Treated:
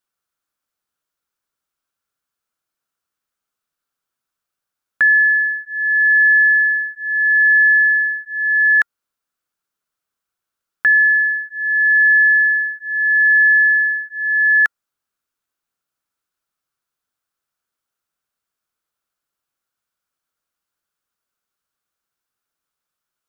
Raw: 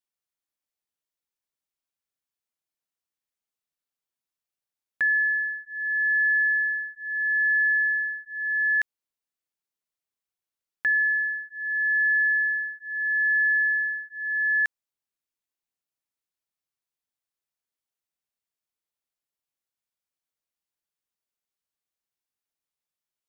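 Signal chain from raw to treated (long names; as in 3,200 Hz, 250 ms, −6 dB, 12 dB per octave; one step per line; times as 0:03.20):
drawn EQ curve 910 Hz 0 dB, 1,400 Hz +9 dB, 1,900 Hz −2 dB
level +8.5 dB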